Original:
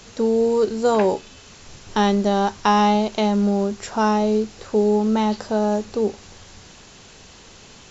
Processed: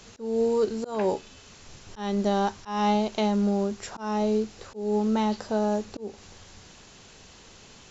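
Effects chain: auto swell 0.247 s; gain -5 dB

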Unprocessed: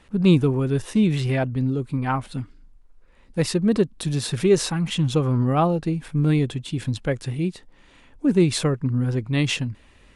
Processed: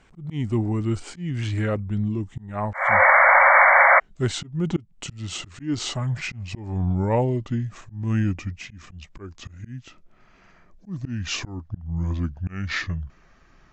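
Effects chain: speed glide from 83% -> 65%; painted sound noise, 2.73–4, 520–2300 Hz -12 dBFS; auto swell 0.288 s; gain -2 dB

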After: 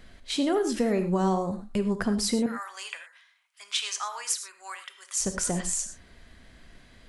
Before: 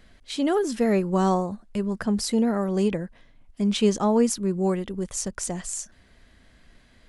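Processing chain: 2.46–5.21 HPF 1200 Hz 24 dB/oct; compressor 6:1, threshold -25 dBFS, peak gain reduction 8 dB; non-linear reverb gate 0.14 s flat, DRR 8 dB; gain +2.5 dB

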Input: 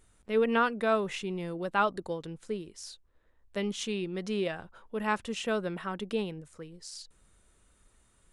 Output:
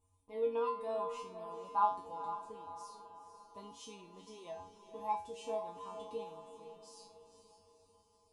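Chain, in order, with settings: EQ curve 240 Hz 0 dB, 640 Hz -3 dB, 1000 Hz +14 dB, 1500 Hz -22 dB, 2300 Hz -9 dB, 7800 Hz -3 dB; flange 0.99 Hz, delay 3.3 ms, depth 6.1 ms, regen -80%; resonator 93 Hz, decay 0.39 s, harmonics odd, mix 100%; on a send: diffused feedback echo 0.481 s, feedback 49%, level -10 dB; on the sum: gain +8 dB

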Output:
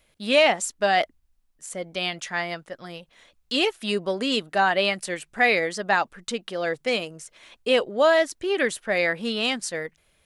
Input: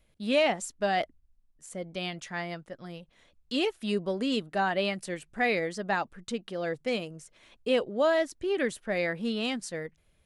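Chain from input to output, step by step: low shelf 370 Hz -11 dB; gain +9 dB

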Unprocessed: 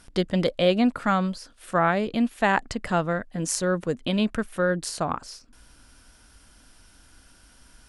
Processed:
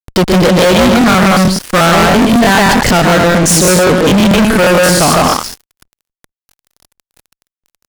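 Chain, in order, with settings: loudspeakers at several distances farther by 41 m -10 dB, 53 m -2 dB, 84 m -10 dB; fuzz box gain 33 dB, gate -41 dBFS; crackling interface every 0.11 s, samples 1024, repeat, from 0.99; gain +7 dB

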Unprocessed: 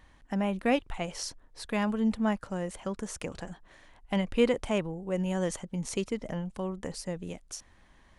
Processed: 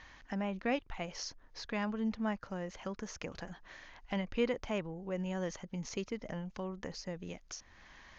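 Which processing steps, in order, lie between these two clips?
in parallel at +2 dB: compressor, threshold -43 dBFS, peak gain reduction 22.5 dB; on the sum: rippled Chebyshev low-pass 6700 Hz, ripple 3 dB; mismatched tape noise reduction encoder only; gain -6 dB

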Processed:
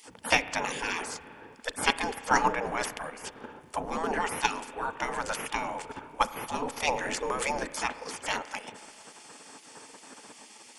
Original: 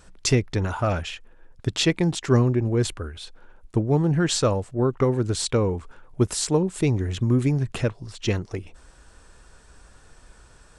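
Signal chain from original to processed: spectral gate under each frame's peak -25 dB weak; small resonant body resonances 260/440/860 Hz, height 9 dB, ringing for 30 ms; in parallel at +2.5 dB: level quantiser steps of 18 dB; on the sum: notch 3900 Hz, Q 8.6; spring tank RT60 2.4 s, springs 33 ms, chirp 75 ms, DRR 13.5 dB; gain +7.5 dB

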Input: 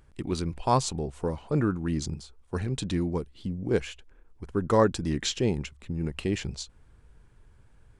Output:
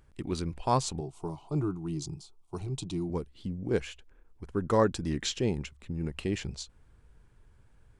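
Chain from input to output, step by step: 1–3.1 fixed phaser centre 340 Hz, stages 8; gain -3 dB

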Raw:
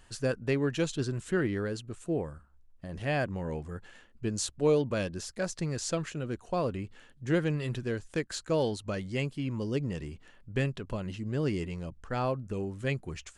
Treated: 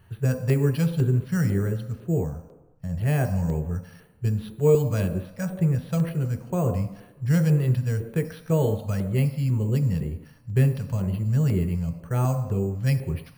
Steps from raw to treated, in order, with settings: careless resampling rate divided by 6×, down filtered, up hold; on a send at -5 dB: reverb RT60 1.0 s, pre-delay 3 ms; on the sum: LFO notch square 2 Hz 370–5200 Hz

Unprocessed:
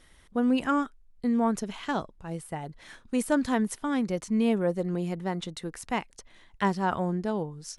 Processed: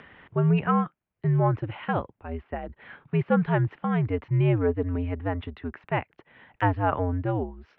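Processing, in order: mistuned SSB -89 Hz 160–2800 Hz; upward compressor, threshold -44 dBFS; gain +3 dB

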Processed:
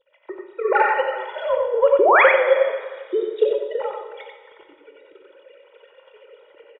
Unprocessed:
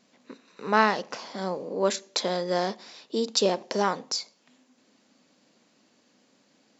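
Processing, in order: sine-wave speech; comb 2.1 ms, depth 95%; in parallel at +0.5 dB: compressor, threshold -29 dBFS, peak gain reduction 18 dB; on the sum: transient shaper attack +10 dB, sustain -4 dB; AGC gain up to 13.5 dB; painted sound rise, 1.99–2.23, 340–2600 Hz -8 dBFS; on a send: echo 92 ms -3.5 dB; on the sum: plate-style reverb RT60 1.7 s, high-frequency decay 0.9×, DRR 4.5 dB; gain -6.5 dB

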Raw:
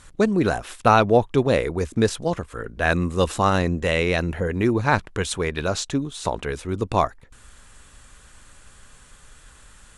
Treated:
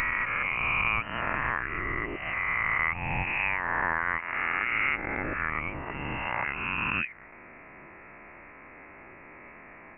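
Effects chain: spectral swells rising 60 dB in 2.20 s; Bessel high-pass 2200 Hz, order 8; compressor 3:1, threshold -35 dBFS, peak gain reduction 11.5 dB; inverted band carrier 3700 Hz; gain +9 dB

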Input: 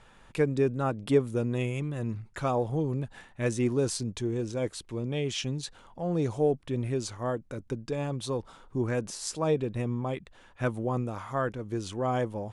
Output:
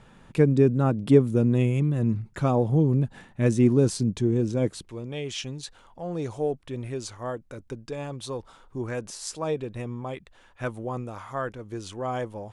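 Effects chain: bell 180 Hz +10.5 dB 2.3 oct, from 4.89 s -4 dB

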